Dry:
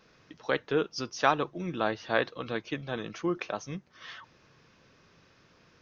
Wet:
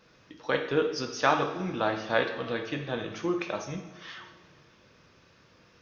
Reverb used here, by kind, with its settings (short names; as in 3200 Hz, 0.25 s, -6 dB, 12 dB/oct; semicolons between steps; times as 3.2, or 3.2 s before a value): two-slope reverb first 0.71 s, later 2.9 s, from -16 dB, DRR 3 dB